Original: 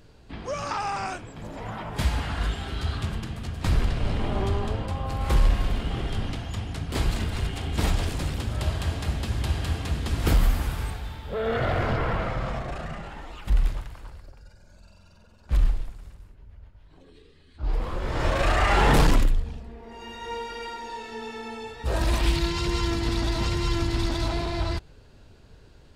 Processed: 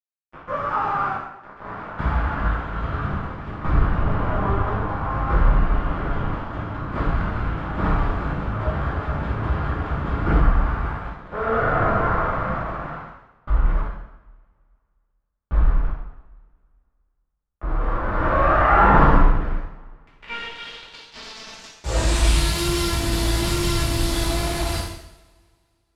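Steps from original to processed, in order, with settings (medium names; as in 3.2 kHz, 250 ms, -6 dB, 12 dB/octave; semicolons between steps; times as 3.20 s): small samples zeroed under -29 dBFS; low-pass sweep 1.3 kHz -> 11 kHz, 19.21–22.52 s; two-slope reverb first 0.79 s, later 2.4 s, from -24 dB, DRR -7.5 dB; trim -4.5 dB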